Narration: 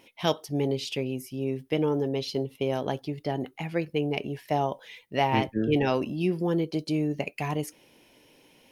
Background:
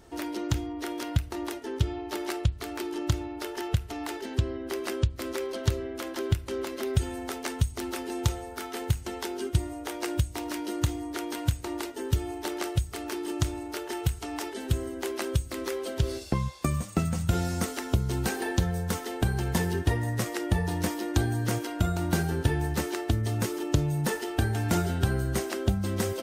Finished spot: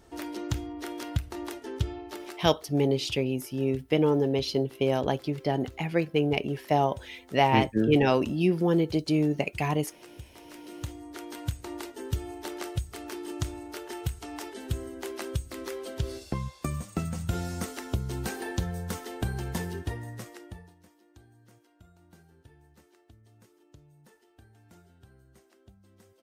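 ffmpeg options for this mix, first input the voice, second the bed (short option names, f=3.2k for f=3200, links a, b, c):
-filter_complex "[0:a]adelay=2200,volume=2.5dB[a];[1:a]volume=11.5dB,afade=t=out:st=1.86:d=0.7:silence=0.158489,afade=t=in:st=10.24:d=1.47:silence=0.188365,afade=t=out:st=19.37:d=1.38:silence=0.0501187[b];[a][b]amix=inputs=2:normalize=0"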